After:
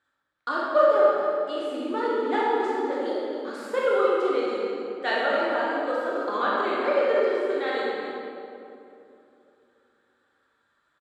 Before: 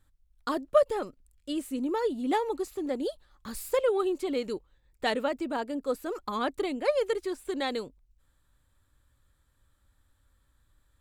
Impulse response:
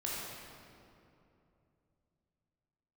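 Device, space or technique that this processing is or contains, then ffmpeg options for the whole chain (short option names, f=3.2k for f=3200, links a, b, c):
station announcement: -filter_complex "[0:a]asettb=1/sr,asplit=3[a][b][c];[a]atrim=end=6.854[d];[b]atrim=start=6.85:end=7.67,asetpts=PTS-STARTPTS,afade=t=in:d=0.004:c=qsin,afade=t=out:st=0.816:d=0.004:c=qsin,acrossover=split=3300[e][f];[f]acompressor=threshold=-49dB:ratio=4:attack=1:release=60[g];[e][g]amix=inputs=2:normalize=0[h];[c]atrim=start=7.666[i];[d][h]acrossfade=d=0.004:c1=hsin:c2=qsin[j];[j][i]acrossfade=d=0.004:c1=qsin:c2=hsin,highpass=370,lowpass=4.6k,equalizer=f=1.5k:t=o:w=0.5:g=8,aecho=1:1:58.31|279.9:0.355|0.282[k];[1:a]atrim=start_sample=2205[l];[k][l]afir=irnorm=-1:irlink=0,volume=1dB"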